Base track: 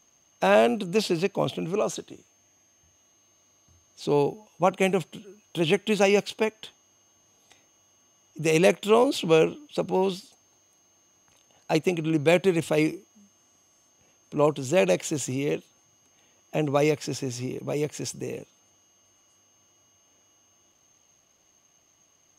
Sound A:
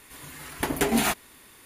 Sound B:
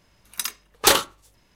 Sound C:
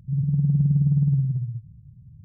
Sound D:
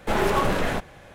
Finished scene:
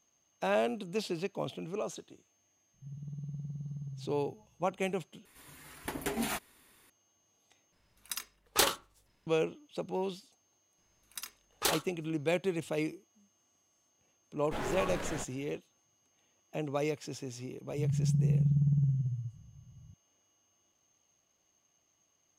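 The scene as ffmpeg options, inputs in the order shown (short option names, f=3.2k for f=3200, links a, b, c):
-filter_complex "[3:a]asplit=2[a][b];[2:a]asplit=2[c][d];[0:a]volume=-10.5dB[e];[a]equalizer=f=95:w=0.52:g=-11[f];[e]asplit=3[g][h][i];[g]atrim=end=5.254[j];[1:a]atrim=end=1.65,asetpts=PTS-STARTPTS,volume=-11dB[k];[h]atrim=start=6.896:end=7.724[l];[c]atrim=end=1.55,asetpts=PTS-STARTPTS,volume=-10.5dB[m];[i]atrim=start=9.266[n];[f]atrim=end=2.24,asetpts=PTS-STARTPTS,volume=-12.5dB,afade=t=in:d=0.004:c=hsin,afade=t=out:st=2.236:d=0.004:c=hsin,adelay=2740[o];[d]atrim=end=1.55,asetpts=PTS-STARTPTS,volume=-14.5dB,afade=t=in:d=0.004:c=hsin,afade=t=out:st=1.546:d=0.004:c=hsin,adelay=10780[p];[4:a]atrim=end=1.14,asetpts=PTS-STARTPTS,volume=-14dB,afade=t=in:d=0.004:c=hsin,afade=t=out:st=1.136:d=0.004:c=hsin,adelay=636804S[q];[b]atrim=end=2.24,asetpts=PTS-STARTPTS,volume=-7.5dB,afade=t=in:d=0.004:c=hsin,afade=t=out:st=2.236:d=0.004:c=hsin,adelay=17700[r];[j][k]acrossfade=d=0.004:c1=hsin:c2=hsin[s];[s][l]acrossfade=d=0.004:c1=hsin:c2=hsin[t];[t][m]acrossfade=d=0.004:c1=hsin:c2=hsin[u];[u][n]acrossfade=d=0.004:c1=hsin:c2=hsin[v];[v][o][p][q][r]amix=inputs=5:normalize=0"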